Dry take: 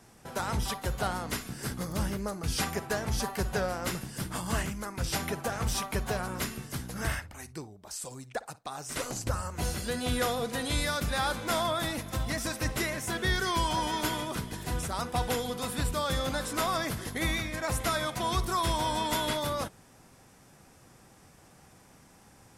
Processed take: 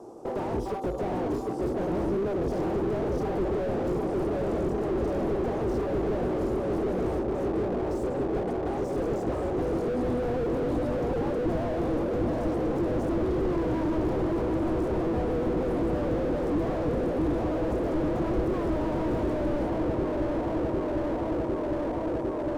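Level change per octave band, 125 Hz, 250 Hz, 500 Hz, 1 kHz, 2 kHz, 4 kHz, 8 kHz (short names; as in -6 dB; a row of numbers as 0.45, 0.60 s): +2.0 dB, +9.5 dB, +9.0 dB, -1.5 dB, -8.0 dB, -15.5 dB, under -15 dB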